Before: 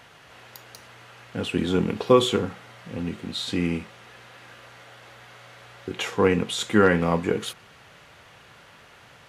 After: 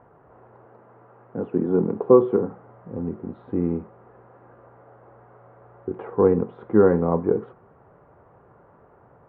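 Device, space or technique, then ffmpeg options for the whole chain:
under water: -filter_complex "[0:a]lowpass=f=1.1k:w=0.5412,lowpass=f=1.1k:w=1.3066,equalizer=f=390:t=o:w=0.56:g=5.5,asettb=1/sr,asplit=3[a][b][c];[a]atrim=end=0.654[d];[b]atrim=start=0.65:end=2.51,asetpts=PTS-STARTPTS,afade=t=in:d=0.004:c=qsin,afade=t=out:st=1.856:d=0.004:c=qsin,highpass=f=120:w=0.5412,highpass=f=120:w=1.3066[e];[c]atrim=start=2.506[f];[d][e]acrossfade=d=0.004:c1=hsin:c2=qsin[g];[g][f]acrossfade=d=0.004:c1=qsin:c2=hsin"

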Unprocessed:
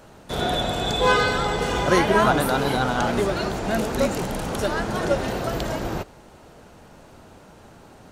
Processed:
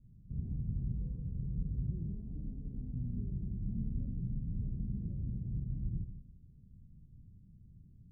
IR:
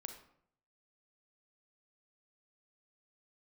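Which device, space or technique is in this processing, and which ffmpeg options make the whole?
club heard from the street: -filter_complex "[0:a]alimiter=limit=-14dB:level=0:latency=1:release=101,lowpass=f=160:w=0.5412,lowpass=f=160:w=1.3066[a];[1:a]atrim=start_sample=2205[b];[a][b]afir=irnorm=-1:irlink=0,asettb=1/sr,asplit=3[c][d][e];[c]atrim=end=2.174[f];[d]atrim=start=2.17:end=2.94,asetpts=PTS-STARTPTS,afade=t=in:d=0.004:c=qsin,afade=t=out:st=0.766:d=0.004:c=qsin,equalizer=f=130:t=o:w=0.73:g=-11.5[g];[e]atrim=start=2.936[h];[f][g]acrossfade=d=0.004:c1=hsin:c2=qsin[i];[i][h]acrossfade=d=0.004:c1=qsin:c2=hsin,volume=1dB"

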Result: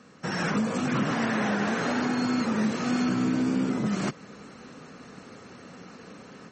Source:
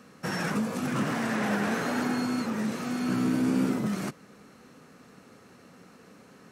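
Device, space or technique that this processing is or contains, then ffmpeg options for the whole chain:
low-bitrate web radio: -af "dynaudnorm=f=340:g=3:m=7.5dB,alimiter=limit=-17dB:level=0:latency=1:release=434" -ar 48000 -c:a libmp3lame -b:a 32k

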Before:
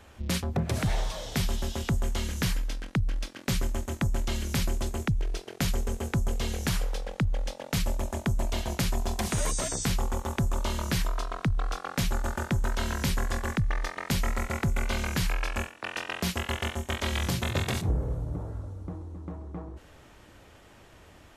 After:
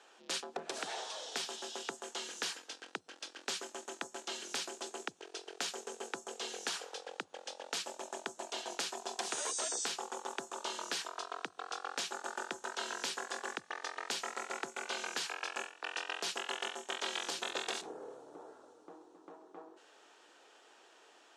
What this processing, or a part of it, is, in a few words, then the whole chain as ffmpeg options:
phone speaker on a table: -af "highpass=f=410:w=0.5412,highpass=f=410:w=1.3066,equalizer=f=580:t=q:w=4:g=-8,equalizer=f=1.1k:t=q:w=4:g=-4,equalizer=f=2.1k:t=q:w=4:g=-8,lowpass=f=8.6k:w=0.5412,lowpass=f=8.6k:w=1.3066,volume=-2.5dB"

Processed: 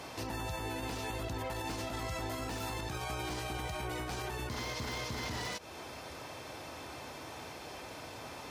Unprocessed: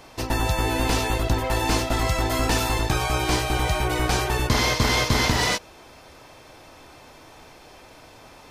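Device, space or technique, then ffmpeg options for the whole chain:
podcast mastering chain: -af "highpass=f=61:w=0.5412,highpass=f=61:w=1.3066,deesser=0.55,acompressor=threshold=-32dB:ratio=3,alimiter=level_in=7dB:limit=-24dB:level=0:latency=1:release=70,volume=-7dB,volume=2dB" -ar 44100 -c:a libmp3lame -b:a 112k

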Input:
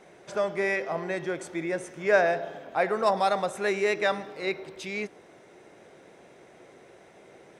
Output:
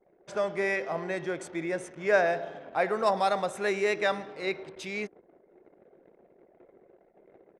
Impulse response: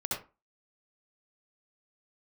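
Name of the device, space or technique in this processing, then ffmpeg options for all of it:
voice memo with heavy noise removal: -af "anlmdn=0.01,dynaudnorm=f=180:g=3:m=4.5dB,volume=-6dB"

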